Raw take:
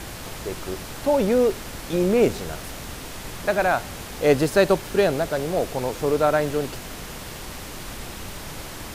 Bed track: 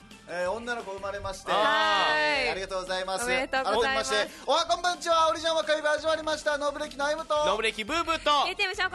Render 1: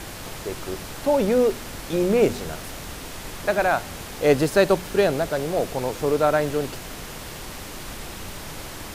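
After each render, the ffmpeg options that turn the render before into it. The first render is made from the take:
-af "bandreject=f=60:t=h:w=4,bandreject=f=120:t=h:w=4,bandreject=f=180:t=h:w=4,bandreject=f=240:t=h:w=4"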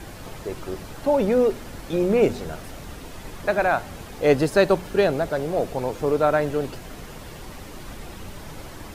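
-af "afftdn=nr=8:nf=-37"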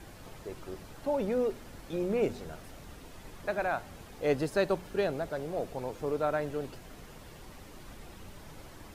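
-af "volume=0.299"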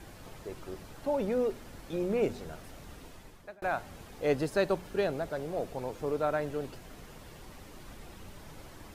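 -filter_complex "[0:a]asplit=2[s0][s1];[s0]atrim=end=3.62,asetpts=PTS-STARTPTS,afade=t=out:st=3.05:d=0.57[s2];[s1]atrim=start=3.62,asetpts=PTS-STARTPTS,afade=t=in:d=0.004:c=hsin[s3];[s2][s3]concat=n=2:v=0:a=1"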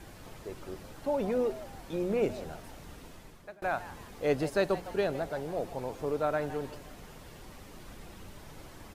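-filter_complex "[0:a]asplit=4[s0][s1][s2][s3];[s1]adelay=159,afreqshift=150,volume=0.168[s4];[s2]adelay=318,afreqshift=300,volume=0.0589[s5];[s3]adelay=477,afreqshift=450,volume=0.0207[s6];[s0][s4][s5][s6]amix=inputs=4:normalize=0"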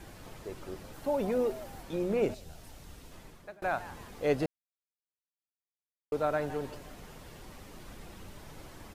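-filter_complex "[0:a]asettb=1/sr,asplit=3[s0][s1][s2];[s0]atrim=end=0.934[s3];[s1]atrim=start=0.93:end=1.83,asetpts=PTS-STARTPTS,afade=t=in:d=0.004:c=qsin,afade=t=out:st=0.896:d=0.004:c=qsin,highshelf=f=11000:g=7.5[s4];[s2]atrim=start=1.826[s5];[s3][s4]acrossfade=d=0.004:c1=hsin:c2=qsin[s6];[s6][s5]acrossfade=d=0.004:c1=qsin:c2=hsin,asettb=1/sr,asplit=3[s7][s8][s9];[s7]atrim=end=2.344[s10];[s8]atrim=start=2.34:end=3.12,asetpts=PTS-STARTPTS,afade=t=in:d=0.004:c=qsin,afade=t=out:st=0.776:d=0.004:c=qsin,acrossover=split=120|3000[s11][s12][s13];[s12]acompressor=threshold=0.00224:ratio=5:attack=3.2:release=140:knee=2.83:detection=peak[s14];[s11][s14][s13]amix=inputs=3:normalize=0[s15];[s9]atrim=start=3.116[s16];[s10][s15]acrossfade=d=0.004:c1=hsin:c2=qsin[s17];[s17][s16]acrossfade=d=0.004:c1=qsin:c2=hsin,asplit=3[s18][s19][s20];[s18]atrim=end=4.46,asetpts=PTS-STARTPTS,afade=t=out:st=4.456:d=0.004:c=hsin[s21];[s19]atrim=start=4.46:end=6.12,asetpts=PTS-STARTPTS,volume=0[s22];[s20]atrim=start=6.12,asetpts=PTS-STARTPTS,afade=t=in:d=0.004:c=hsin[s23];[s21][s22][s23]concat=n=3:v=0:a=1"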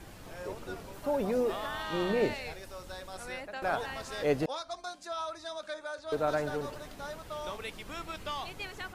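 -filter_complex "[1:a]volume=0.2[s0];[0:a][s0]amix=inputs=2:normalize=0"

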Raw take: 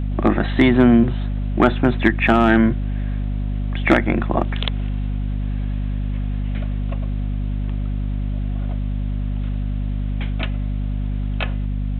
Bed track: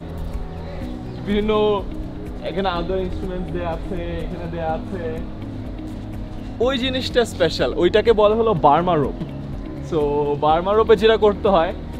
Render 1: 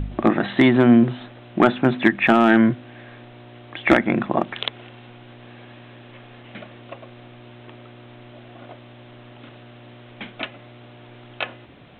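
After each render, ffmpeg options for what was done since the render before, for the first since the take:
-af "bandreject=f=50:t=h:w=4,bandreject=f=100:t=h:w=4,bandreject=f=150:t=h:w=4,bandreject=f=200:t=h:w=4,bandreject=f=250:t=h:w=4"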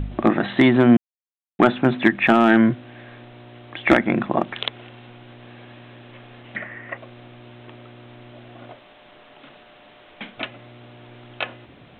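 -filter_complex "[0:a]asettb=1/sr,asplit=3[s0][s1][s2];[s0]atrim=end=6.564[s3];[s1]atrim=start=6.56:end=6.97,asetpts=PTS-STARTPTS,afade=t=in:d=0.004:c=qsin,afade=t=out:st=0.406:d=0.004:c=qsin,lowpass=f=1900:t=q:w=12[s4];[s2]atrim=start=6.966[s5];[s3][s4]acrossfade=d=0.004:c1=hsin:c2=qsin[s6];[s6][s5]acrossfade=d=0.004:c1=qsin:c2=hsin,asettb=1/sr,asplit=3[s7][s8][s9];[s7]atrim=end=8.704[s10];[s8]atrim=start=8.7:end=10.38,asetpts=PTS-STARTPTS,afade=t=in:d=0.004:c=qsin,afade=t=out:st=1.676:d=0.004:c=qsin,bandreject=f=60:t=h:w=6,bandreject=f=120:t=h:w=6,bandreject=f=180:t=h:w=6,bandreject=f=240:t=h:w=6,bandreject=f=300:t=h:w=6,bandreject=f=360:t=h:w=6,bandreject=f=420:t=h:w=6,bandreject=f=480:t=h:w=6,bandreject=f=540:t=h:w=6[s11];[s9]atrim=start=10.376[s12];[s10][s11]acrossfade=d=0.004:c1=hsin:c2=qsin[s13];[s13][s12]acrossfade=d=0.004:c1=qsin:c2=hsin,asplit=3[s14][s15][s16];[s14]atrim=end=0.97,asetpts=PTS-STARTPTS,afade=t=out:st=0.966:d=0.004:c=hsin[s17];[s15]atrim=start=0.97:end=1.59,asetpts=PTS-STARTPTS,volume=0[s18];[s16]atrim=start=1.59,asetpts=PTS-STARTPTS,afade=t=in:d=0.004:c=hsin[s19];[s17][s18][s19]concat=n=3:v=0:a=1"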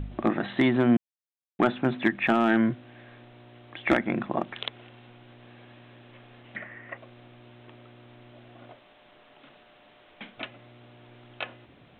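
-af "volume=0.422"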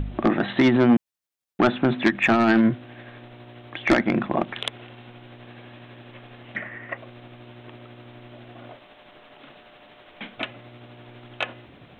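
-af "tremolo=f=12:d=0.31,aeval=exprs='0.282*sin(PI/2*1.58*val(0)/0.282)':c=same"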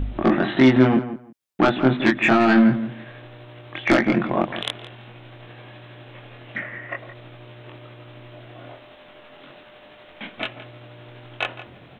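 -filter_complex "[0:a]asplit=2[s0][s1];[s1]adelay=23,volume=0.794[s2];[s0][s2]amix=inputs=2:normalize=0,asplit=2[s3][s4];[s4]adelay=168,lowpass=f=2200:p=1,volume=0.251,asplit=2[s5][s6];[s6]adelay=168,lowpass=f=2200:p=1,volume=0.18[s7];[s3][s5][s7]amix=inputs=3:normalize=0"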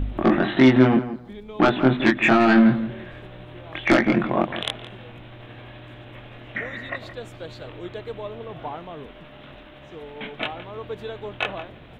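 -filter_complex "[1:a]volume=0.1[s0];[0:a][s0]amix=inputs=2:normalize=0"

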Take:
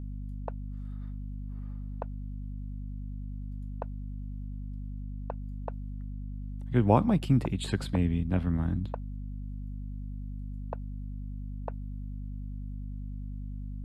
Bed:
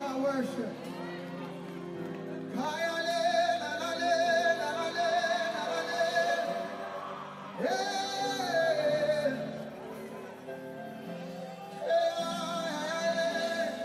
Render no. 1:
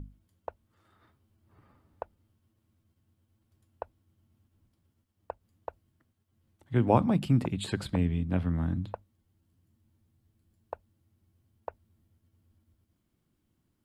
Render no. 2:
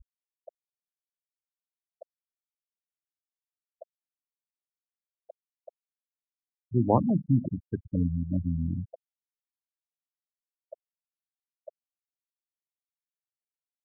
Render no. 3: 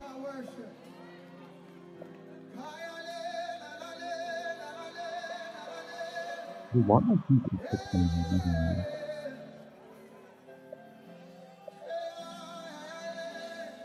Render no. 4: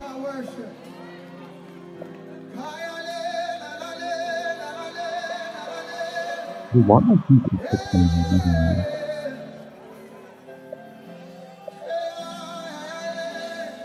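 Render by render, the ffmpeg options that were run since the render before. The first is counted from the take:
-af "bandreject=f=50:t=h:w=6,bandreject=f=100:t=h:w=6,bandreject=f=150:t=h:w=6,bandreject=f=200:t=h:w=6,bandreject=f=250:t=h:w=6"
-af "afftfilt=real='re*gte(hypot(re,im),0.126)':imag='im*gte(hypot(re,im),0.126)':win_size=1024:overlap=0.75,equalizer=f=260:t=o:w=0.77:g=2"
-filter_complex "[1:a]volume=0.316[s0];[0:a][s0]amix=inputs=2:normalize=0"
-af "volume=2.99,alimiter=limit=0.891:level=0:latency=1"

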